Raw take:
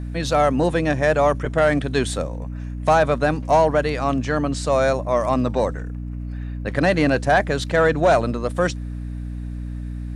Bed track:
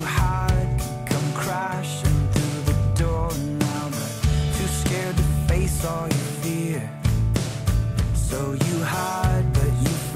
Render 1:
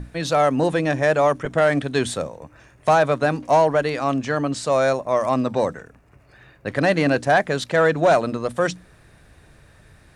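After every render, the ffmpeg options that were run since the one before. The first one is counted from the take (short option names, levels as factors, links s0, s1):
-af "bandreject=f=60:t=h:w=6,bandreject=f=120:t=h:w=6,bandreject=f=180:t=h:w=6,bandreject=f=240:t=h:w=6,bandreject=f=300:t=h:w=6"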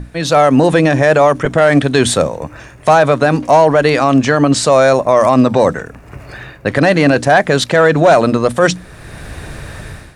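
-af "dynaudnorm=f=140:g=5:m=6.31,alimiter=level_in=2:limit=0.891:release=50:level=0:latency=1"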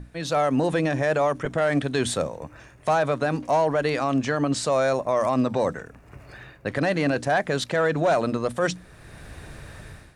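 -af "volume=0.237"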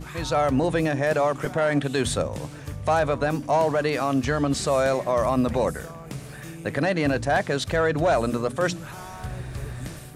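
-filter_complex "[1:a]volume=0.2[s0];[0:a][s0]amix=inputs=2:normalize=0"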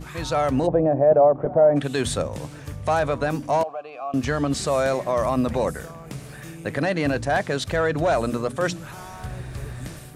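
-filter_complex "[0:a]asplit=3[s0][s1][s2];[s0]afade=t=out:st=0.66:d=0.02[s3];[s1]lowpass=f=660:t=q:w=2.7,afade=t=in:st=0.66:d=0.02,afade=t=out:st=1.75:d=0.02[s4];[s2]afade=t=in:st=1.75:d=0.02[s5];[s3][s4][s5]amix=inputs=3:normalize=0,asettb=1/sr,asplit=3[s6][s7][s8];[s6]atrim=end=3.634[s9];[s7]atrim=start=3.63:end=4.14,asetpts=PTS-STARTPTS,afade=t=in:d=0.004:c=qsin,afade=t=out:st=0.506:d=0.004:c=qsin,asplit=3[s10][s11][s12];[s10]bandpass=f=730:t=q:w=8,volume=1[s13];[s11]bandpass=f=1090:t=q:w=8,volume=0.501[s14];[s12]bandpass=f=2440:t=q:w=8,volume=0.355[s15];[s13][s14][s15]amix=inputs=3:normalize=0[s16];[s8]atrim=start=4.136[s17];[s9][s16]acrossfade=d=0.004:c1=hsin:c2=qsin[s18];[s18][s17]acrossfade=d=0.004:c1=qsin:c2=hsin"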